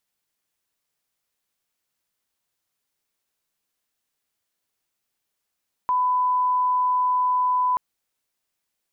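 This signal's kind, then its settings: line-up tone -18 dBFS 1.88 s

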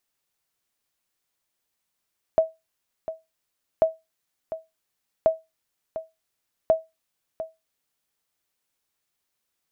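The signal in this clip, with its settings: sonar ping 645 Hz, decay 0.21 s, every 1.44 s, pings 4, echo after 0.70 s, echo -13 dB -10 dBFS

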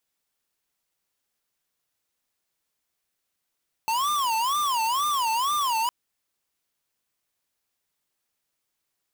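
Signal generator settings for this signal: siren wail 887–1200 Hz 2.1 per s square -24.5 dBFS 2.01 s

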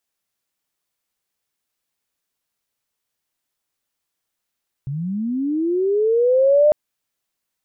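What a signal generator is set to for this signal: sweep linear 130 Hz -> 610 Hz -23 dBFS -> -9.5 dBFS 1.85 s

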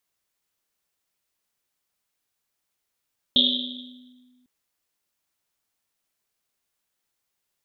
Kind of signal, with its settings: Risset drum, pitch 250 Hz, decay 1.85 s, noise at 3.5 kHz, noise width 650 Hz, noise 70%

